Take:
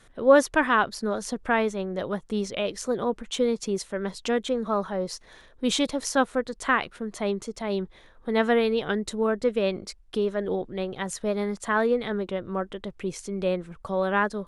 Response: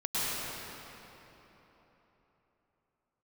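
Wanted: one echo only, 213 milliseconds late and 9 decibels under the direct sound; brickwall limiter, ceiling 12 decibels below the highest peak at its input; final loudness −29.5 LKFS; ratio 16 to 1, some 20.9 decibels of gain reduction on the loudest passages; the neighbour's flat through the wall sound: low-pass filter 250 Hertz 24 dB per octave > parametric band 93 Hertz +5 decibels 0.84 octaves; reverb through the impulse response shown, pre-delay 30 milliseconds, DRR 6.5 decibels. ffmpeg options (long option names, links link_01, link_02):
-filter_complex "[0:a]acompressor=threshold=-32dB:ratio=16,alimiter=level_in=5dB:limit=-24dB:level=0:latency=1,volume=-5dB,aecho=1:1:213:0.355,asplit=2[link_01][link_02];[1:a]atrim=start_sample=2205,adelay=30[link_03];[link_02][link_03]afir=irnorm=-1:irlink=0,volume=-16.5dB[link_04];[link_01][link_04]amix=inputs=2:normalize=0,lowpass=frequency=250:width=0.5412,lowpass=frequency=250:width=1.3066,equalizer=frequency=93:width_type=o:width=0.84:gain=5,volume=15dB"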